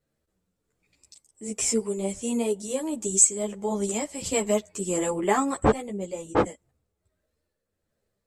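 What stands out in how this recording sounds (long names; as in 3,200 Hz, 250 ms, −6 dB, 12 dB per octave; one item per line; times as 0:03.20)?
tremolo triangle 1.4 Hz, depth 45%
a shimmering, thickened sound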